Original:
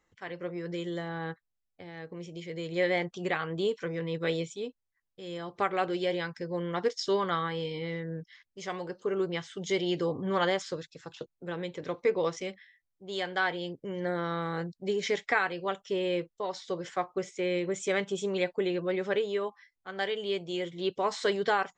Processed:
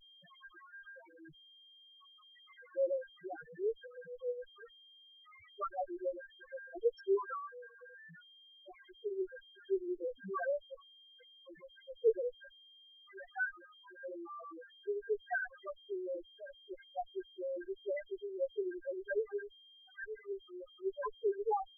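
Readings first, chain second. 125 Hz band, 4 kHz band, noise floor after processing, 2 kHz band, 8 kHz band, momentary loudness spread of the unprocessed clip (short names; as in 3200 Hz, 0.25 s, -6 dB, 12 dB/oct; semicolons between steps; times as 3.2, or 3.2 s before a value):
under -25 dB, -18.0 dB, -62 dBFS, -10.0 dB, under -30 dB, 13 LU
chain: whine 1600 Hz -33 dBFS; added harmonics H 7 -16 dB, 8 -29 dB, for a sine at -13 dBFS; loudest bins only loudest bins 1; gain +5 dB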